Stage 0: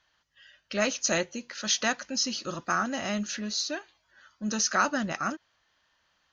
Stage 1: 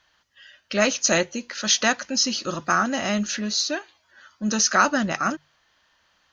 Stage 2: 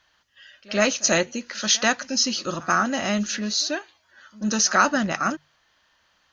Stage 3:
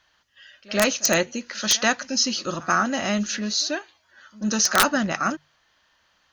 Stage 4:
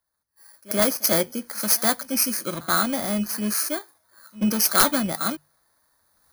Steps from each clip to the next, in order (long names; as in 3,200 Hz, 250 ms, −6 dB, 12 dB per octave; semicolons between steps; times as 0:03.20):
mains-hum notches 50/100/150 Hz; level +6.5 dB
backwards echo 87 ms −22 dB
wrap-around overflow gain 8 dB
samples in bit-reversed order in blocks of 16 samples; camcorder AGC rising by 15 dB per second; multiband upward and downward expander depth 40%; level −1 dB